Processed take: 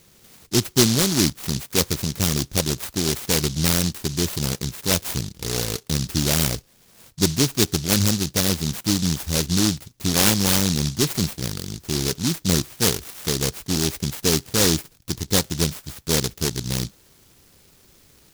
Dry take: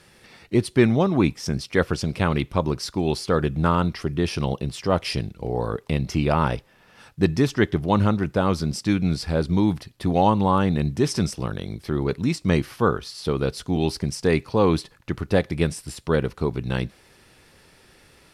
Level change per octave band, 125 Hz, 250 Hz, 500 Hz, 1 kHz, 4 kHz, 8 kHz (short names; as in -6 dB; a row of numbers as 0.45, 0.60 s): -0.5, -1.0, -4.0, -7.5, +11.0, +16.5 dB